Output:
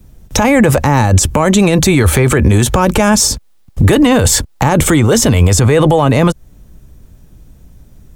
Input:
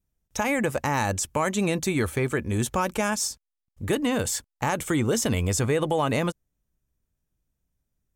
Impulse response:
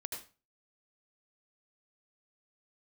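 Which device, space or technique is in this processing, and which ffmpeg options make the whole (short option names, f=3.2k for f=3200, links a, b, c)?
mastering chain: -filter_complex "[0:a]equalizer=f=3.9k:t=o:w=0.77:g=2.5,acrossover=split=89|610[a][b][c];[a]acompressor=threshold=-39dB:ratio=4[d];[b]acompressor=threshold=-37dB:ratio=4[e];[c]acompressor=threshold=-33dB:ratio=4[f];[d][e][f]amix=inputs=3:normalize=0,acompressor=threshold=-41dB:ratio=1.5,asoftclip=type=tanh:threshold=-22dB,tiltshelf=f=910:g=5,alimiter=level_in=34.5dB:limit=-1dB:release=50:level=0:latency=1,volume=-1dB"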